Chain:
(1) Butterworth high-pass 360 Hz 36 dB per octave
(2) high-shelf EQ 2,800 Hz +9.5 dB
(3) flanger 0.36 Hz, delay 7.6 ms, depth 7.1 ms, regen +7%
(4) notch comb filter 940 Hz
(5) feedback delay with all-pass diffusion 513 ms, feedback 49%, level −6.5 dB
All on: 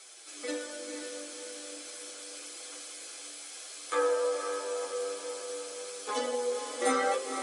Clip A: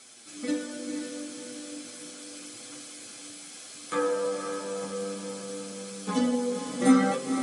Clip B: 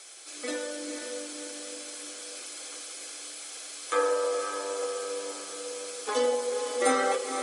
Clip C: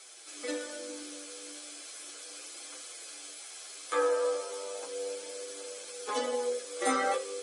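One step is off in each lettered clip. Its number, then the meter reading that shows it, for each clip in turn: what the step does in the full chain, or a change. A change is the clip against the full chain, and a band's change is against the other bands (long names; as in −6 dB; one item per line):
1, 250 Hz band +15.5 dB
3, change in integrated loudness +3.0 LU
5, echo-to-direct ratio −5.5 dB to none audible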